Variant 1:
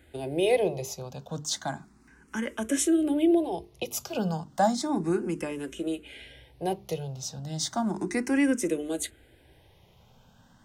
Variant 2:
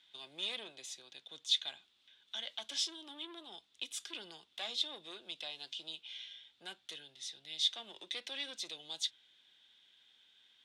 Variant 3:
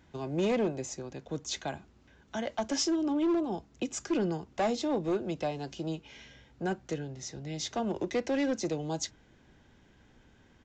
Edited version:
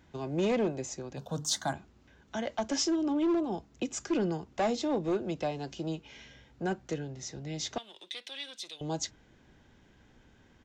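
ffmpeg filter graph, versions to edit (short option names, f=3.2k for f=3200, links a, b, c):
-filter_complex "[2:a]asplit=3[a][b][c];[a]atrim=end=1.172[d];[0:a]atrim=start=1.168:end=1.732[e];[b]atrim=start=1.728:end=7.782[f];[1:a]atrim=start=7.778:end=8.812[g];[c]atrim=start=8.808[h];[d][e]acrossfade=d=0.004:c1=hsin:c2=hsin[i];[i][f]acrossfade=d=0.004:c1=hsin:c2=hsin[j];[j][g]acrossfade=d=0.004:c1=hsin:c2=hsin[k];[k][h]acrossfade=d=0.004:c1=hsin:c2=hsin"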